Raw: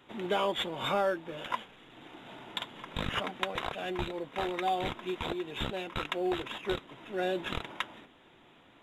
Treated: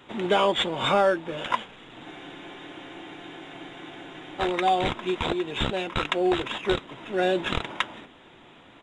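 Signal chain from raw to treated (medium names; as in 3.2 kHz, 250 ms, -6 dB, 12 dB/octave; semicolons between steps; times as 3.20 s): resampled via 22.05 kHz; spectral freeze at 2.07 s, 2.34 s; trim +8 dB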